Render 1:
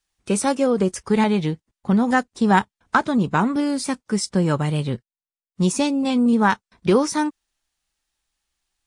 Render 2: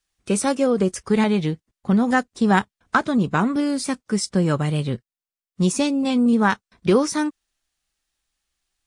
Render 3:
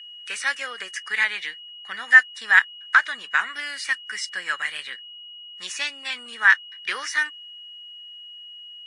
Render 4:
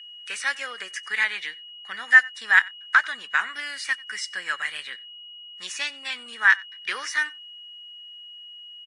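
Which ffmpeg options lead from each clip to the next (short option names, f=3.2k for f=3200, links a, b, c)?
-af "equalizer=f=900:t=o:w=0.22:g=-5.5"
-filter_complex "[0:a]acrossover=split=6500[a][b];[b]acompressor=threshold=-43dB:ratio=4:attack=1:release=60[c];[a][c]amix=inputs=2:normalize=0,aeval=exprs='val(0)+0.00794*sin(2*PI*2900*n/s)':c=same,highpass=f=1.8k:t=q:w=6.4,volume=-1dB"
-af "aecho=1:1:92:0.0631,volume=-1.5dB"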